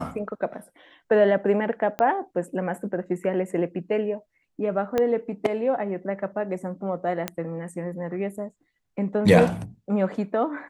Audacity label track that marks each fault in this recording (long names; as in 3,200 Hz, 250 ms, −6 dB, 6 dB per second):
1.990000	1.990000	click −14 dBFS
4.980000	4.980000	click −11 dBFS
7.280000	7.280000	click −11 dBFS